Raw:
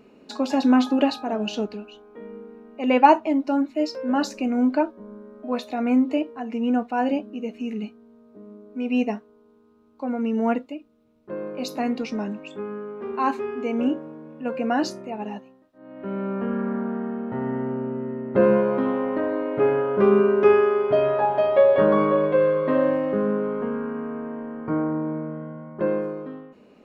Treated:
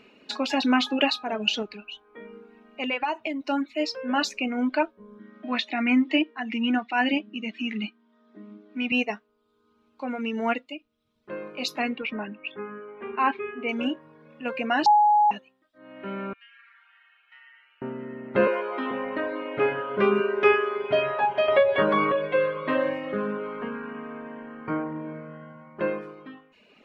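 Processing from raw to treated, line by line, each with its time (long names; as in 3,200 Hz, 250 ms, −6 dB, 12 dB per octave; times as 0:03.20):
0:01.62–0:03.41: downward compressor, threshold −23 dBFS
0:05.19–0:08.92: loudspeaker in its box 200–6,400 Hz, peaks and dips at 210 Hz +8 dB, 320 Hz +10 dB, 470 Hz −9 dB, 1,900 Hz +9 dB, 3,300 Hz +5 dB
0:11.96–0:13.69: low-pass filter 2,800 Hz 24 dB per octave
0:14.86–0:15.31: beep over 837 Hz −12 dBFS
0:16.33–0:17.82: four-pole ladder high-pass 1,900 Hz, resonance 30%
0:18.47–0:18.91: Butterworth high-pass 260 Hz
0:21.48–0:22.12: multiband upward and downward compressor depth 70%
whole clip: reverb reduction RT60 0.75 s; parametric band 2,700 Hz +15 dB 2.2 octaves; level −5 dB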